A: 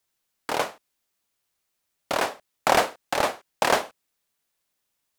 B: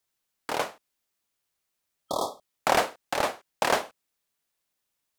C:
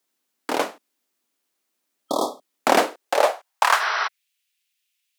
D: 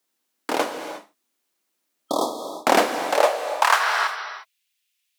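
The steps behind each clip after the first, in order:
spectral repair 2.07–2.48, 1300–3200 Hz; gain -3 dB
high-pass sweep 260 Hz -> 2600 Hz, 2.78–4.24; spectral repair 3.83–4.05, 360–6000 Hz before; gain +4 dB
non-linear reverb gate 0.38 s flat, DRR 6.5 dB

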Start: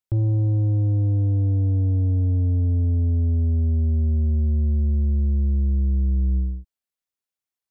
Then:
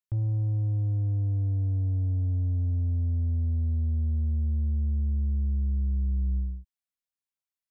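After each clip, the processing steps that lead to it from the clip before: bell 390 Hz -11.5 dB 0.93 oct; gain -6 dB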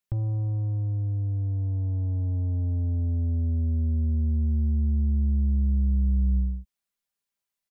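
comb 5 ms, depth 48%; gain +5 dB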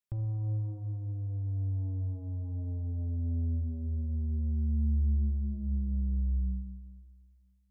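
Schroeder reverb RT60 2 s, combs from 28 ms, DRR 7.5 dB; gain -7.5 dB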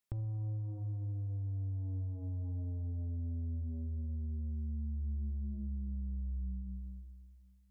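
compressor 6:1, threshold -40 dBFS, peak gain reduction 14 dB; gain +3.5 dB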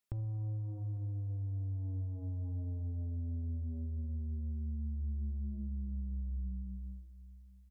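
echo 0.854 s -22 dB

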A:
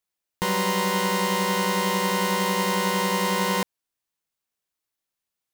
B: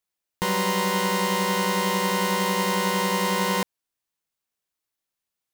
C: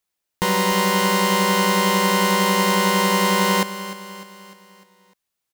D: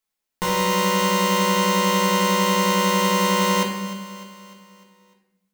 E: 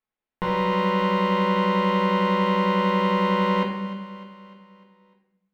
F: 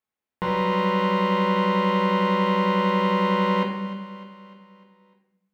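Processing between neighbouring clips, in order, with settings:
nothing audible
feedback echo 0.301 s, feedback 52%, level -14.5 dB; gain +4.5 dB
notches 50/100/150/200 Hz; reverb, pre-delay 4 ms, DRR -0.5 dB; gain -4.5 dB
air absorption 420 m
HPF 45 Hz

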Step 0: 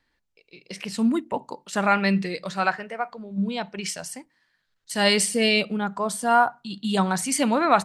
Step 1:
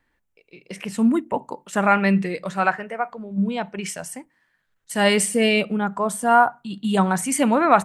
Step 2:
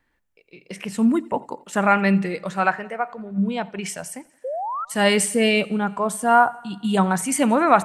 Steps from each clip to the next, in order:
bell 4500 Hz -12 dB 0.89 oct; gain +3.5 dB
painted sound rise, 4.44–4.85, 490–1400 Hz -27 dBFS; thinning echo 87 ms, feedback 63%, high-pass 180 Hz, level -23.5 dB

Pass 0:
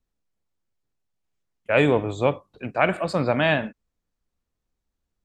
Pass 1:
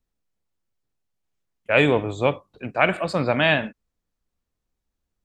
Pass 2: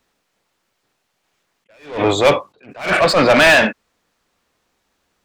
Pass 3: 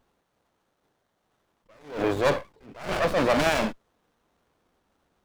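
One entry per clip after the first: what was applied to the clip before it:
dynamic EQ 3000 Hz, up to +5 dB, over -35 dBFS, Q 0.81
overdrive pedal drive 30 dB, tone 3500 Hz, clips at -2 dBFS; attack slew limiter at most 140 dB/s
G.711 law mismatch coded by mu; running maximum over 17 samples; gain -9 dB

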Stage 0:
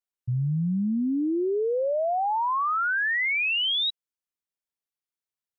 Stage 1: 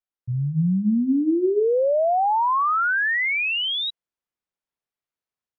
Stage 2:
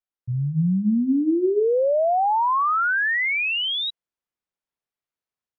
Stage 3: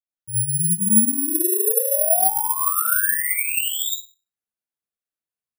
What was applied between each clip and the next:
LPF 1900 Hz 6 dB/oct; notches 50/100/150/200/250/300/350/400 Hz; AGC gain up to 6 dB
nothing audible
reverb RT60 0.35 s, pre-delay 54 ms, DRR -7 dB; flange 0.44 Hz, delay 8 ms, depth 7.8 ms, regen -44%; careless resampling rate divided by 4×, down filtered, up zero stuff; gain -9.5 dB

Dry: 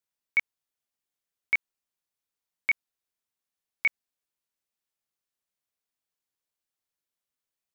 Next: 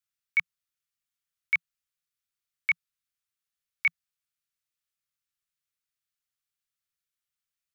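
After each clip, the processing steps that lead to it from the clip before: Chebyshev band-stop 170–1200 Hz, order 4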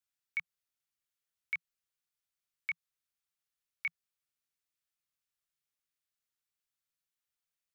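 limiter -21.5 dBFS, peak gain reduction 5.5 dB; compressor, threshold -29 dBFS, peak gain reduction 5 dB; gain -2.5 dB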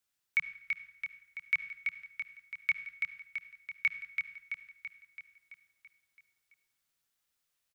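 feedback echo 0.333 s, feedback 58%, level -5 dB; on a send at -12.5 dB: reverb RT60 0.85 s, pre-delay 55 ms; on the sum: gain +6.5 dB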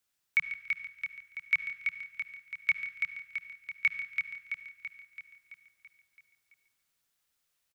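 feedback echo 0.142 s, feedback 27%, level -12.5 dB; gain +2.5 dB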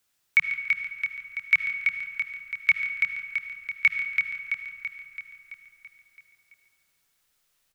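digital reverb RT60 3.7 s, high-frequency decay 0.25×, pre-delay 45 ms, DRR 8.5 dB; gain +7 dB

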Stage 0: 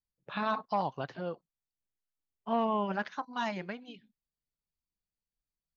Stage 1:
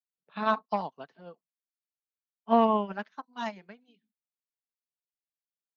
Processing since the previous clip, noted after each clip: HPF 160 Hz 24 dB/oct; comb 4.5 ms, depth 31%; upward expander 2.5:1, over -41 dBFS; gain +7 dB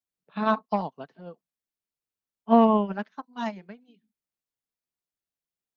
low shelf 490 Hz +8.5 dB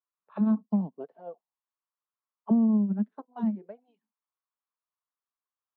auto-wah 210–1100 Hz, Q 4.2, down, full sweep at -27 dBFS; compressor 10:1, threshold -29 dBFS, peak gain reduction 10 dB; gain +9 dB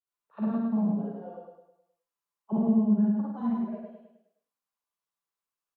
vibrato 0.37 Hz 76 cents; on a send: feedback echo 0.104 s, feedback 45%, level -3 dB; on the sum: Schroeder reverb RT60 0.32 s, DRR -5 dB; gain -6 dB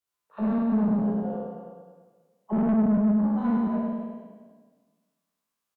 spectral trails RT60 1.45 s; tube stage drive 24 dB, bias 0.25; echo 0.256 s -9 dB; gain +4.5 dB

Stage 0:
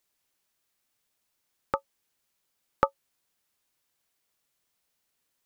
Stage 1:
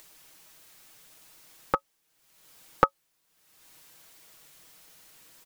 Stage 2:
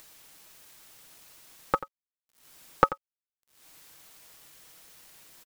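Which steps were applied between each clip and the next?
comb 6.3 ms, depth 54%; upward compressor, threshold -42 dBFS; gain +3 dB
bit-crush 9-bit; echo 88 ms -15 dB

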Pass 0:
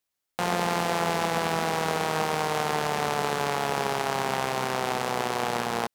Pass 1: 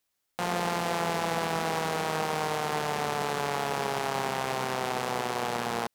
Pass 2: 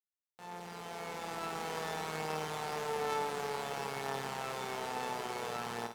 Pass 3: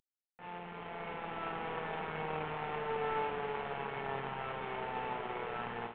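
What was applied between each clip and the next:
limiter -20 dBFS, peak gain reduction 10 dB; gain +4 dB
opening faded in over 1.80 s; resonator 440 Hz, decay 0.33 s, harmonics all, mix 80%; on a send: flutter echo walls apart 8.8 m, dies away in 0.41 s; on the sum: gain +3 dB
CVSD 16 kbps; gain +1 dB

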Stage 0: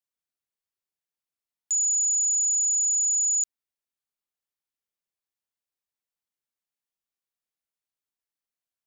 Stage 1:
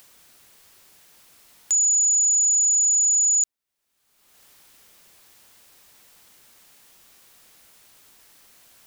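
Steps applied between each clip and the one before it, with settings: upward compressor, threshold -32 dBFS; gain +4.5 dB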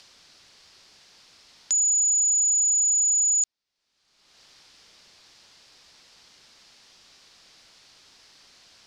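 synth low-pass 4900 Hz, resonance Q 2.4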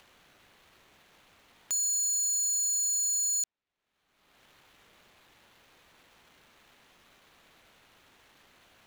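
median filter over 9 samples

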